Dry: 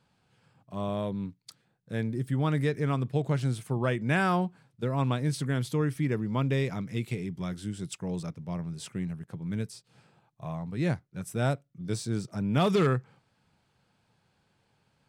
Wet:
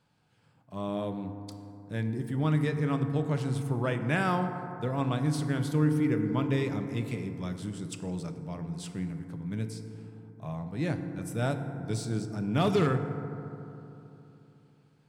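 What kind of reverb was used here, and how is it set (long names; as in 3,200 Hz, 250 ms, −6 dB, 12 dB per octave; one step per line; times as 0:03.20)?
feedback delay network reverb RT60 3.1 s, low-frequency decay 1.2×, high-frequency decay 0.3×, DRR 6.5 dB
level −2 dB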